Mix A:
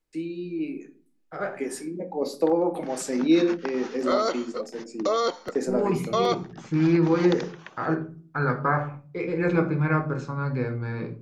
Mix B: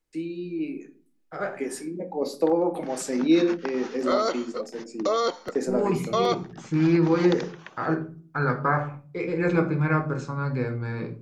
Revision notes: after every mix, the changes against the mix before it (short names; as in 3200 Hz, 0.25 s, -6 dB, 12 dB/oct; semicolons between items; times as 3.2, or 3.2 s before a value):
second voice: remove air absorption 58 m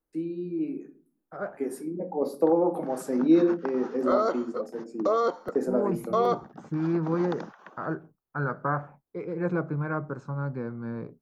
second voice: send off; master: add band shelf 4000 Hz -13 dB 2.4 oct